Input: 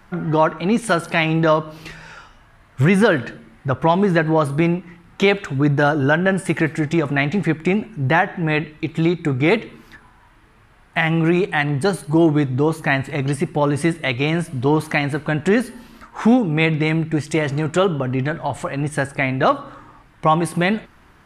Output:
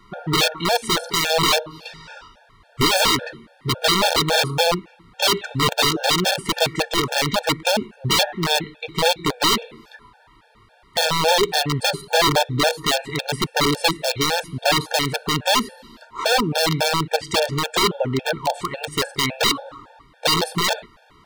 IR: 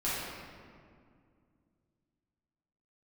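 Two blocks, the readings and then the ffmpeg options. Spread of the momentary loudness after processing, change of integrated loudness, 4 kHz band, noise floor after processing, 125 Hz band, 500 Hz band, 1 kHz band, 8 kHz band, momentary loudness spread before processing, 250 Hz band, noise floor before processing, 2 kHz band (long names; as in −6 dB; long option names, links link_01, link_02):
7 LU, −1.0 dB, +13.0 dB, −54 dBFS, −7.5 dB, −3.0 dB, +0.5 dB, +12.0 dB, 7 LU, −8.5 dB, −51 dBFS, −1.5 dB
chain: -af "aeval=exprs='(mod(3.98*val(0)+1,2)-1)/3.98':channel_layout=same,equalizer=frequency=500:width_type=o:width=1:gain=7,equalizer=frequency=1000:width_type=o:width=1:gain=5,equalizer=frequency=4000:width_type=o:width=1:gain=11,afftfilt=real='re*gt(sin(2*PI*3.6*pts/sr)*(1-2*mod(floor(b*sr/1024/460),2)),0)':imag='im*gt(sin(2*PI*3.6*pts/sr)*(1-2*mod(floor(b*sr/1024/460),2)),0)':win_size=1024:overlap=0.75,volume=-2.5dB"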